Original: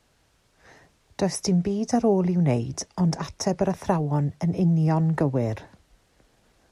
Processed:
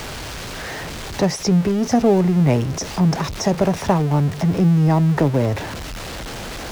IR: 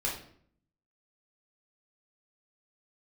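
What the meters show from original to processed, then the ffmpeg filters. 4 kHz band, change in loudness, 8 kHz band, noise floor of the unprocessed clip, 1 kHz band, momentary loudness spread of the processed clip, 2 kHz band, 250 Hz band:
+9.5 dB, +5.5 dB, +5.0 dB, -65 dBFS, +6.5 dB, 14 LU, +11.0 dB, +6.0 dB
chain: -filter_complex "[0:a]aeval=exprs='val(0)+0.5*0.0376*sgn(val(0))':c=same,acrossover=split=6400[s0][s1];[s1]acompressor=threshold=0.00562:ratio=4:attack=1:release=60[s2];[s0][s2]amix=inputs=2:normalize=0,volume=1.68"

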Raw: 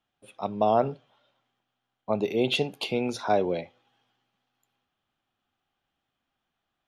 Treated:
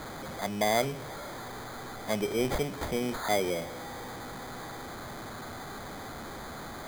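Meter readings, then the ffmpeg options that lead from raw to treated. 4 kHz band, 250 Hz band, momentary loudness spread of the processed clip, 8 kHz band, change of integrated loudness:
-3.0 dB, -2.5 dB, 12 LU, +9.5 dB, -6.5 dB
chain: -af "aeval=exprs='val(0)+0.5*0.0355*sgn(val(0))':c=same,acrusher=samples=16:mix=1:aa=0.000001,volume=0.531"

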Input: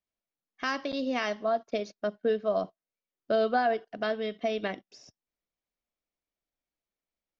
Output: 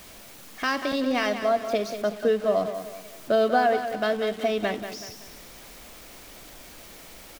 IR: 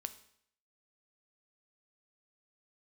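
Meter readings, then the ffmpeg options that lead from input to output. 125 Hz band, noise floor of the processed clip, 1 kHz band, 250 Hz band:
no reading, -46 dBFS, +5.0 dB, +5.5 dB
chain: -af "aeval=exprs='val(0)+0.5*0.00891*sgn(val(0))':c=same,aecho=1:1:189|378|567|756:0.335|0.131|0.0509|0.0199,volume=1.58"

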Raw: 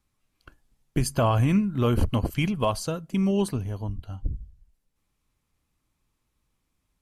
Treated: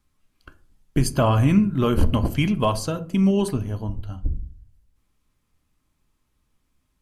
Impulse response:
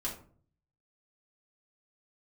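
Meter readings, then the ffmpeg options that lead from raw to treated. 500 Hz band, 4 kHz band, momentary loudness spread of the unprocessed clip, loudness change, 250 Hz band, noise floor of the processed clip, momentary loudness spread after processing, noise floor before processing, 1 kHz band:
+3.0 dB, +3.5 dB, 13 LU, +4.0 dB, +4.5 dB, -72 dBFS, 13 LU, -77 dBFS, +3.0 dB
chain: -filter_complex "[0:a]asplit=2[s0][s1];[1:a]atrim=start_sample=2205,highshelf=f=5200:g=-10[s2];[s1][s2]afir=irnorm=-1:irlink=0,volume=0.376[s3];[s0][s3]amix=inputs=2:normalize=0,volume=1.19"

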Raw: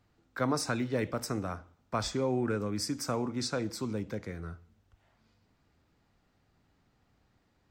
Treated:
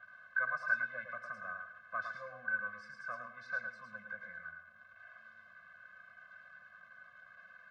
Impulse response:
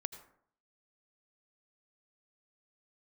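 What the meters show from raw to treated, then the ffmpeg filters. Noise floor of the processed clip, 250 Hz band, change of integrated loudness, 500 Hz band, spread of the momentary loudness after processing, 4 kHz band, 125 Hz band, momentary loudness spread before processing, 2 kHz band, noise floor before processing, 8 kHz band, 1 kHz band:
-61 dBFS, -30.0 dB, -6.0 dB, -18.0 dB, 21 LU, -24.5 dB, -28.0 dB, 12 LU, +8.0 dB, -72 dBFS, under -30 dB, -6.0 dB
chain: -filter_complex "[0:a]aeval=exprs='val(0)+0.5*0.00668*sgn(val(0))':c=same,aemphasis=mode=reproduction:type=75fm,acontrast=68,bandpass=f=1500:t=q:w=12:csg=0,asplit=2[s0][s1];[1:a]atrim=start_sample=2205,highshelf=f=2900:g=5.5,adelay=109[s2];[s1][s2]afir=irnorm=-1:irlink=0,volume=0.531[s3];[s0][s3]amix=inputs=2:normalize=0,afftfilt=real='re*eq(mod(floor(b*sr/1024/250),2),0)':imag='im*eq(mod(floor(b*sr/1024/250),2),0)':win_size=1024:overlap=0.75,volume=2"

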